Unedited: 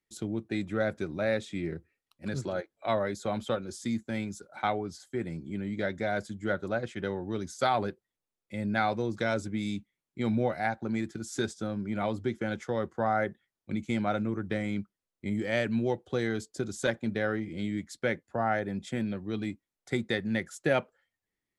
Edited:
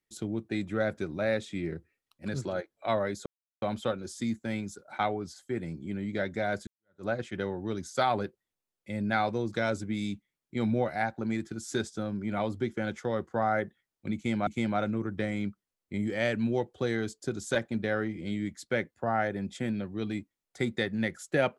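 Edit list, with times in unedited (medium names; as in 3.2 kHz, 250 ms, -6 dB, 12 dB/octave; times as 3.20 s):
3.26 s: insert silence 0.36 s
6.31–6.69 s: fade in exponential
13.79–14.11 s: loop, 2 plays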